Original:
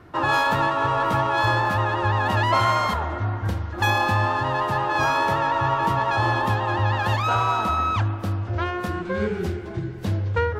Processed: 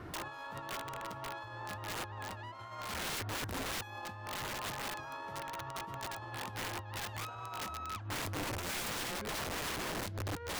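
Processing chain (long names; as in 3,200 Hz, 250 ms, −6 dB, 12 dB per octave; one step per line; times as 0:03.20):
compressor whose output falls as the input rises −29 dBFS, ratio −0.5
wrap-around overflow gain 26.5 dB
level −7 dB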